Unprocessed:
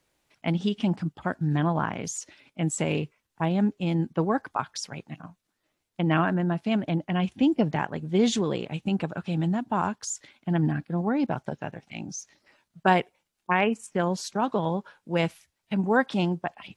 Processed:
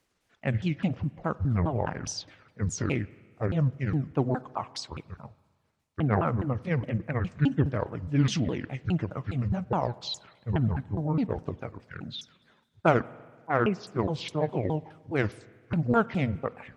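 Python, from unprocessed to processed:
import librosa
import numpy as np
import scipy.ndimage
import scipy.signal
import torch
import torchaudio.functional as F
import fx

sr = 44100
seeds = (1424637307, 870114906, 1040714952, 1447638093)

y = fx.pitch_ramps(x, sr, semitones=-11.5, every_ms=207)
y = fx.cheby_harmonics(y, sr, harmonics=(7,), levels_db=(-36,), full_scale_db=-6.5)
y = fx.rev_spring(y, sr, rt60_s=1.6, pass_ms=(44, 48), chirp_ms=70, drr_db=19.5)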